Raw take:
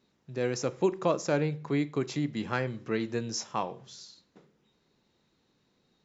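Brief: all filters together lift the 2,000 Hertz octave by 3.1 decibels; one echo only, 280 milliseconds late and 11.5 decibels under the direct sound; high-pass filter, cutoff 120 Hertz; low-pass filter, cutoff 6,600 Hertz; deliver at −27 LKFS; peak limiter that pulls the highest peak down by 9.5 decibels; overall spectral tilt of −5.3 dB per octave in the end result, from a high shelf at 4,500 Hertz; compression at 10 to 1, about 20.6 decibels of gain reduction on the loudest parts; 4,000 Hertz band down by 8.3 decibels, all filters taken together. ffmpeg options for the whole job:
ffmpeg -i in.wav -af "highpass=120,lowpass=6600,equalizer=frequency=2000:width_type=o:gain=7,equalizer=frequency=4000:width_type=o:gain=-8,highshelf=frequency=4500:gain=-7,acompressor=threshold=-42dB:ratio=10,alimiter=level_in=14.5dB:limit=-24dB:level=0:latency=1,volume=-14.5dB,aecho=1:1:280:0.266,volume=23dB" out.wav

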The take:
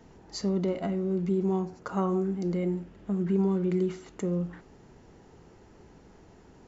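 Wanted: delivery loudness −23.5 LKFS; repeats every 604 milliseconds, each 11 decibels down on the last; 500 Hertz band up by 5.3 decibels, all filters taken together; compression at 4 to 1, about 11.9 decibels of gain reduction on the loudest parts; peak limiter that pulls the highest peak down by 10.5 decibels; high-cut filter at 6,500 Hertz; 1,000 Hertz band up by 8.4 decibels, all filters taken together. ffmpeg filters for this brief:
ffmpeg -i in.wav -af "lowpass=6500,equalizer=frequency=500:width_type=o:gain=6.5,equalizer=frequency=1000:width_type=o:gain=8.5,acompressor=threshold=-34dB:ratio=4,alimiter=level_in=5.5dB:limit=-24dB:level=0:latency=1,volume=-5.5dB,aecho=1:1:604|1208|1812:0.282|0.0789|0.0221,volume=15dB" out.wav

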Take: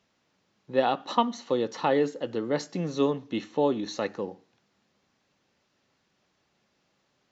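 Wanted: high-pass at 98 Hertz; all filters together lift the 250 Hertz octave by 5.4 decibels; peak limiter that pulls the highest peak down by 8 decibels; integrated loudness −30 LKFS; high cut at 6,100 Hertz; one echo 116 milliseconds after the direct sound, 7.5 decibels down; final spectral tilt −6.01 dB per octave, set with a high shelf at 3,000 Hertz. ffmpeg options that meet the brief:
ffmpeg -i in.wav -af "highpass=98,lowpass=6100,equalizer=frequency=250:width_type=o:gain=6.5,highshelf=frequency=3000:gain=-5.5,alimiter=limit=-15.5dB:level=0:latency=1,aecho=1:1:116:0.422,volume=-2.5dB" out.wav

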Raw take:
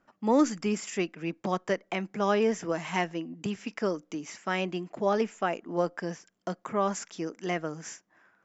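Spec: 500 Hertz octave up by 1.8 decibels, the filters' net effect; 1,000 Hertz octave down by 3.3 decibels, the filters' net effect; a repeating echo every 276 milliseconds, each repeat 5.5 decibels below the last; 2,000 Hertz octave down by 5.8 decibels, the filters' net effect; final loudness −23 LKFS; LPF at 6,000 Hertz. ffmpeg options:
ffmpeg -i in.wav -af "lowpass=6000,equalizer=frequency=500:width_type=o:gain=3.5,equalizer=frequency=1000:width_type=o:gain=-4.5,equalizer=frequency=2000:width_type=o:gain=-6,aecho=1:1:276|552|828|1104|1380|1656|1932:0.531|0.281|0.149|0.079|0.0419|0.0222|0.0118,volume=6dB" out.wav

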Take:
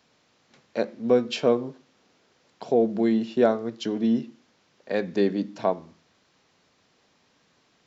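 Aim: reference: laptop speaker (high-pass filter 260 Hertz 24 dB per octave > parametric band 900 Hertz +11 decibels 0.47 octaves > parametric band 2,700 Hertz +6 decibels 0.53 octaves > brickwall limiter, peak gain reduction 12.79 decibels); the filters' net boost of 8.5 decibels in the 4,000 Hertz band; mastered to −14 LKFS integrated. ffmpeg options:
ffmpeg -i in.wav -af "highpass=frequency=260:width=0.5412,highpass=frequency=260:width=1.3066,equalizer=frequency=900:width_type=o:width=0.47:gain=11,equalizer=frequency=2700:width_type=o:width=0.53:gain=6,equalizer=frequency=4000:width_type=o:gain=7.5,volume=16dB,alimiter=limit=-2.5dB:level=0:latency=1" out.wav

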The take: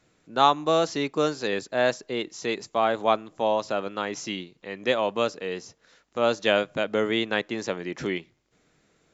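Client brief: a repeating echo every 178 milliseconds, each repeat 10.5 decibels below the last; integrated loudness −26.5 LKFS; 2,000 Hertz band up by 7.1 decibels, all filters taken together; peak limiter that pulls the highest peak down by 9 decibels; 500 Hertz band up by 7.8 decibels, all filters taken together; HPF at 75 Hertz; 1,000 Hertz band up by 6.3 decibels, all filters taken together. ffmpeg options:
ffmpeg -i in.wav -af "highpass=75,equalizer=frequency=500:width_type=o:gain=8,equalizer=frequency=1000:width_type=o:gain=3.5,equalizer=frequency=2000:width_type=o:gain=7.5,alimiter=limit=-8dB:level=0:latency=1,aecho=1:1:178|356|534:0.299|0.0896|0.0269,volume=-5dB" out.wav

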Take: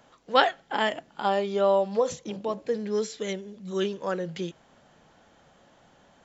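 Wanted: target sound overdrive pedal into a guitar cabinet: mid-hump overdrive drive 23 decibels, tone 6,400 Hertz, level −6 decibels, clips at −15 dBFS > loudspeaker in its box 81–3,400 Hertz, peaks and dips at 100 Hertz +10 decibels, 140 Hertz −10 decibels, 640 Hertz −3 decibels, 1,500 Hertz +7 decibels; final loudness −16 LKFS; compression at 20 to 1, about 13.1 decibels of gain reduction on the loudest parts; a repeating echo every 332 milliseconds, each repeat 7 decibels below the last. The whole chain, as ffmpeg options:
ffmpeg -i in.wav -filter_complex "[0:a]acompressor=threshold=-26dB:ratio=20,aecho=1:1:332|664|996|1328|1660:0.447|0.201|0.0905|0.0407|0.0183,asplit=2[link_01][link_02];[link_02]highpass=frequency=720:poles=1,volume=23dB,asoftclip=type=tanh:threshold=-15dB[link_03];[link_01][link_03]amix=inputs=2:normalize=0,lowpass=frequency=6400:poles=1,volume=-6dB,highpass=81,equalizer=frequency=100:width_type=q:width=4:gain=10,equalizer=frequency=140:width_type=q:width=4:gain=-10,equalizer=frequency=640:width_type=q:width=4:gain=-3,equalizer=frequency=1500:width_type=q:width=4:gain=7,lowpass=frequency=3400:width=0.5412,lowpass=frequency=3400:width=1.3066,volume=9dB" out.wav

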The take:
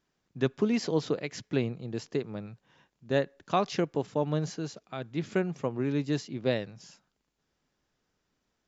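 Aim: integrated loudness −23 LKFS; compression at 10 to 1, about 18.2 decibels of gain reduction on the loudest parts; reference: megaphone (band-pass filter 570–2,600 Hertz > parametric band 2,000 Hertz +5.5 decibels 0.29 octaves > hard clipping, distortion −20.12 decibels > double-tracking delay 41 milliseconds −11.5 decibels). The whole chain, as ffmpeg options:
ffmpeg -i in.wav -filter_complex "[0:a]acompressor=threshold=-40dB:ratio=10,highpass=570,lowpass=2600,equalizer=frequency=2000:width_type=o:width=0.29:gain=5.5,asoftclip=type=hard:threshold=-37dB,asplit=2[link_01][link_02];[link_02]adelay=41,volume=-11.5dB[link_03];[link_01][link_03]amix=inputs=2:normalize=0,volume=29.5dB" out.wav

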